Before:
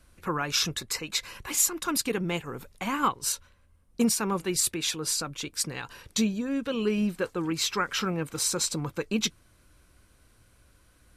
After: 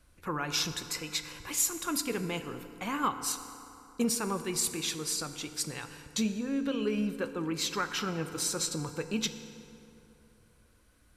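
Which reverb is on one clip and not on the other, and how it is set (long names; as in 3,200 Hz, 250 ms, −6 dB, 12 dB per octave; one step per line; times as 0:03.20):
feedback delay network reverb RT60 3 s, high-frequency decay 0.55×, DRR 9 dB
level −4.5 dB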